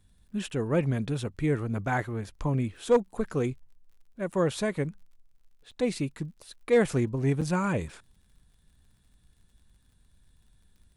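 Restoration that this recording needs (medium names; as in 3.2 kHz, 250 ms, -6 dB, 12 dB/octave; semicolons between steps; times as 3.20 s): clip repair -14 dBFS; de-click; interpolate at 4.32/5.71/7.41 s, 6.1 ms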